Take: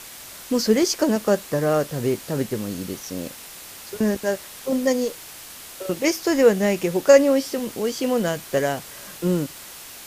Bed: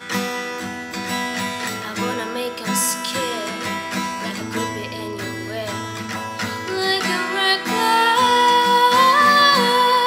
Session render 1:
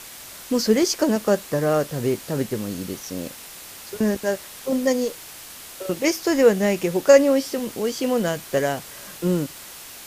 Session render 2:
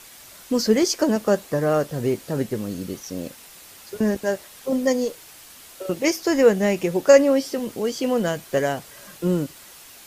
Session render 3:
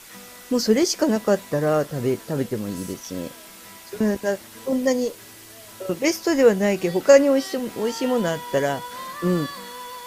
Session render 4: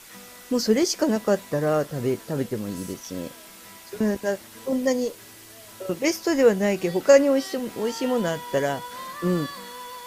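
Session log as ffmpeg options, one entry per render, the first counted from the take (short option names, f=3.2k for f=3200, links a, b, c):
-af anull
-af "afftdn=nr=6:nf=-40"
-filter_complex "[1:a]volume=-21.5dB[a];[0:a][a]amix=inputs=2:normalize=0"
-af "volume=-2dB"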